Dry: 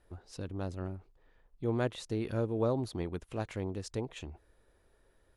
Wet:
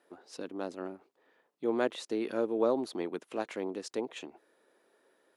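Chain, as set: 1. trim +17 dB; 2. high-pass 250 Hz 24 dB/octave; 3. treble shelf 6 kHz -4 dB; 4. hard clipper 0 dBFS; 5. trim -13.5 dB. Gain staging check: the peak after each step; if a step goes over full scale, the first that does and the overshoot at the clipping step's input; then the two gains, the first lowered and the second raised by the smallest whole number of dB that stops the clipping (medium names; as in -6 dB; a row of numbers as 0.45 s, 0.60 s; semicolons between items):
-2.5 dBFS, -1.5 dBFS, -1.5 dBFS, -1.5 dBFS, -15.0 dBFS; nothing clips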